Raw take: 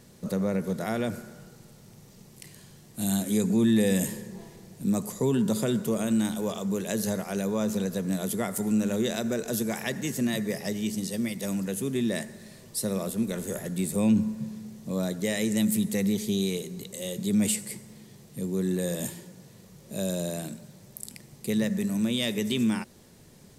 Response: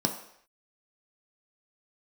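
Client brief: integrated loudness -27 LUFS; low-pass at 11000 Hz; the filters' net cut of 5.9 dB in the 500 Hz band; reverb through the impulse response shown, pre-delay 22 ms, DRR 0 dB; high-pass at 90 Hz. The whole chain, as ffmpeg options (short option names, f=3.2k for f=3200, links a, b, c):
-filter_complex "[0:a]highpass=90,lowpass=11k,equalizer=f=500:t=o:g=-7.5,asplit=2[a][b];[1:a]atrim=start_sample=2205,adelay=22[c];[b][c]afir=irnorm=-1:irlink=0,volume=-8dB[d];[a][d]amix=inputs=2:normalize=0,volume=-6.5dB"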